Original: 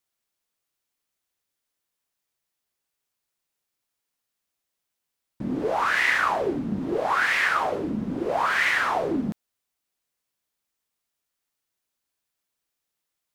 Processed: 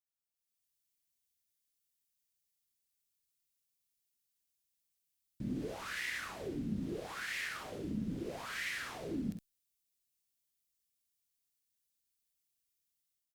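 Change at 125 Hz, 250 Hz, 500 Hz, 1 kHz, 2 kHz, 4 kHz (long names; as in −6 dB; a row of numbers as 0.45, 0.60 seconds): −7.5, −10.5, −17.0, −23.5, −18.0, −12.0 decibels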